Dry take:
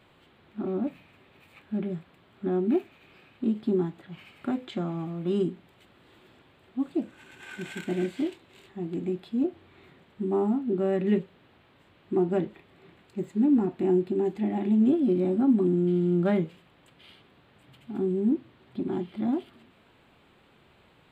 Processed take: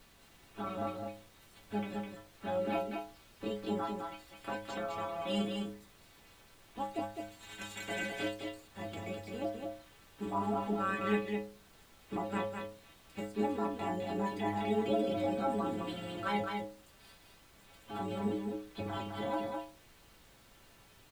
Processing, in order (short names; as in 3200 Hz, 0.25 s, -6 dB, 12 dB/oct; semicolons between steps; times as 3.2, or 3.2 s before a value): spectral limiter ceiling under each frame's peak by 23 dB; in parallel at 0 dB: limiter -22.5 dBFS, peak gain reduction 10 dB; on the sum: reverb removal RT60 0.76 s; metallic resonator 100 Hz, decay 0.52 s, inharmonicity 0.008; added noise pink -63 dBFS; on a send: echo 0.208 s -4.5 dB